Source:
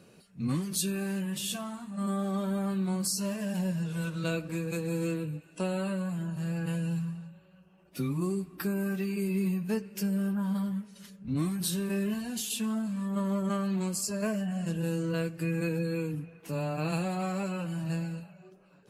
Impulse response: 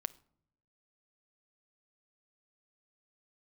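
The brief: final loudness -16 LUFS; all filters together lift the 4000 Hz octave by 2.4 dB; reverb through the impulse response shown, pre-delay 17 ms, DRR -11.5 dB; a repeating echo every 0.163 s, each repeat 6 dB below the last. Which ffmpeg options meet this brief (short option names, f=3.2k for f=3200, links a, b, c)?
-filter_complex "[0:a]equalizer=f=4k:t=o:g=3,aecho=1:1:163|326|489|652|815|978:0.501|0.251|0.125|0.0626|0.0313|0.0157,asplit=2[a][b];[1:a]atrim=start_sample=2205,adelay=17[c];[b][c]afir=irnorm=-1:irlink=0,volume=13dB[d];[a][d]amix=inputs=2:normalize=0,volume=3dB"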